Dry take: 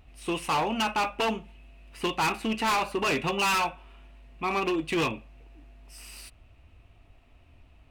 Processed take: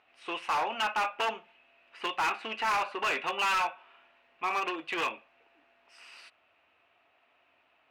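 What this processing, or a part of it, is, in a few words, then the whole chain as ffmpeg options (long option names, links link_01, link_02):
megaphone: -af "highpass=650,lowpass=3300,equalizer=frequency=1500:width_type=o:width=0.41:gain=4,asoftclip=type=hard:threshold=-24dB"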